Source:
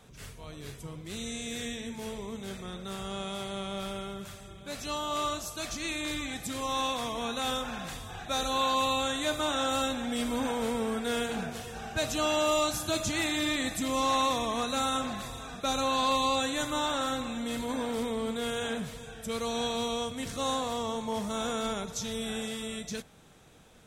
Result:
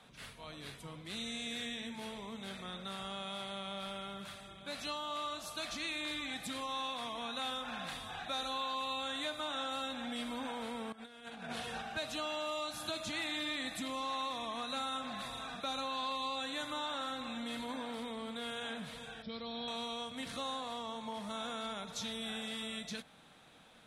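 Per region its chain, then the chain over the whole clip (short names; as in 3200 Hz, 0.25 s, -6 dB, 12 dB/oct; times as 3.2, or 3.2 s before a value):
10.92–11.82 LPF 12000 Hz + negative-ratio compressor -39 dBFS, ratio -0.5
19.22–19.68 brick-wall FIR low-pass 5600 Hz + bell 1400 Hz -9 dB 2.4 oct + notch 2700 Hz, Q 8.8
whole clip: three-band isolator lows -14 dB, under 190 Hz, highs -16 dB, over 3600 Hz; compressor 3:1, threshold -38 dBFS; fifteen-band EQ 400 Hz -9 dB, 4000 Hz +7 dB, 10000 Hz +12 dB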